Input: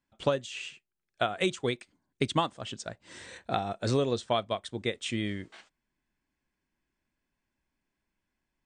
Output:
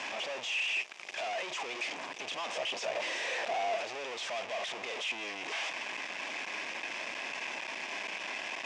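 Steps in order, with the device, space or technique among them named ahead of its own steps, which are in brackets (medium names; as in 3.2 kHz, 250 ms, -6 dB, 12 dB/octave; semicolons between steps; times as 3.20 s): home computer beeper (one-bit comparator; cabinet simulation 630–5700 Hz, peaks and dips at 660 Hz +4 dB, 1.4 kHz -8 dB, 2.5 kHz +7 dB, 4.2 kHz -8 dB); 2.53–3.76 s: peaking EQ 510 Hz +6 dB 1.5 oct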